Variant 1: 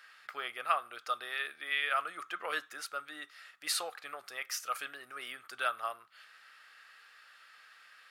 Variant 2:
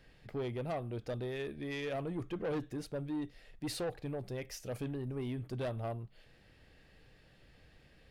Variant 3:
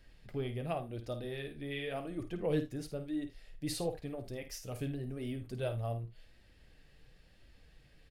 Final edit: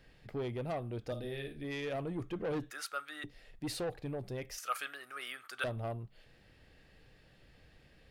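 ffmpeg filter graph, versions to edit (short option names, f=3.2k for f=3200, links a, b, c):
-filter_complex "[0:a]asplit=2[a][b];[1:a]asplit=4[c][d][e][f];[c]atrim=end=1.122[g];[2:a]atrim=start=1.118:end=1.642[h];[d]atrim=start=1.638:end=2.712[i];[a]atrim=start=2.708:end=3.242[j];[e]atrim=start=3.238:end=4.582[k];[b]atrim=start=4.578:end=5.642[l];[f]atrim=start=5.638[m];[g][h]acrossfade=d=0.004:c1=hsin:c2=hsin[n];[n][i]acrossfade=d=0.004:c1=hsin:c2=hsin[o];[o][j]acrossfade=d=0.004:c1=hsin:c2=hsin[p];[p][k]acrossfade=d=0.004:c1=hsin:c2=hsin[q];[q][l]acrossfade=d=0.004:c1=hsin:c2=hsin[r];[r][m]acrossfade=d=0.004:c1=hsin:c2=hsin"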